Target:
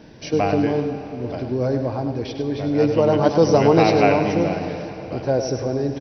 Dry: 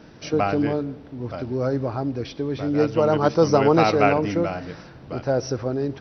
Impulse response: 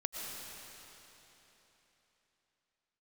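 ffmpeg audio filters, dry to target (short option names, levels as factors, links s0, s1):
-filter_complex "[0:a]equalizer=f=1300:w=6.6:g=-13,aecho=1:1:101:0.376,asplit=2[s0][s1];[1:a]atrim=start_sample=2205[s2];[s1][s2]afir=irnorm=-1:irlink=0,volume=0.447[s3];[s0][s3]amix=inputs=2:normalize=0,volume=0.891"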